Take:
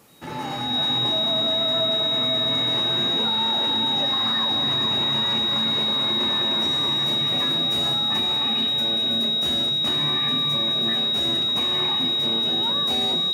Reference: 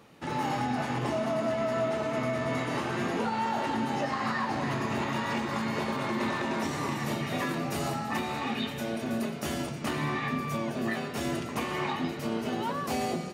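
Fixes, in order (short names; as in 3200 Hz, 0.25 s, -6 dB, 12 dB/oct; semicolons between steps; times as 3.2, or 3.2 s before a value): notch 3800 Hz, Q 30; expander -15 dBFS, range -21 dB; inverse comb 0.438 s -9 dB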